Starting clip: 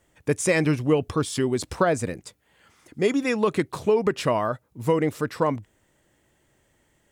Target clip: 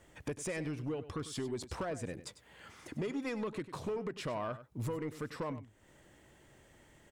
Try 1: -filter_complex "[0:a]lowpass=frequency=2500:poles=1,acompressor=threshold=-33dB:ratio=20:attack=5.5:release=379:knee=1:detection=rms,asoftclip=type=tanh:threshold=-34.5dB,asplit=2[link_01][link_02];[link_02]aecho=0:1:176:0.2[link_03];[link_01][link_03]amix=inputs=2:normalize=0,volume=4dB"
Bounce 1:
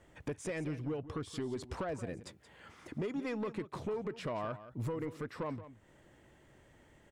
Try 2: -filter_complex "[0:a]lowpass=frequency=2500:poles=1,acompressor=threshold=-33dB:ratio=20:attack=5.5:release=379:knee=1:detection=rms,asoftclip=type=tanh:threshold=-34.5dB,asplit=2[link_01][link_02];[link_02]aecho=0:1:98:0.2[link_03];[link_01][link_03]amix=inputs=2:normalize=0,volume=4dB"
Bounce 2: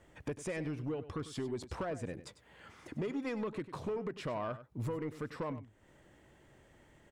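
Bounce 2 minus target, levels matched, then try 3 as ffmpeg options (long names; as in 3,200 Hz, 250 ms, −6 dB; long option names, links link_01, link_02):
8,000 Hz band −6.0 dB
-filter_complex "[0:a]lowpass=frequency=6700:poles=1,acompressor=threshold=-33dB:ratio=20:attack=5.5:release=379:knee=1:detection=rms,asoftclip=type=tanh:threshold=-34.5dB,asplit=2[link_01][link_02];[link_02]aecho=0:1:98:0.2[link_03];[link_01][link_03]amix=inputs=2:normalize=0,volume=4dB"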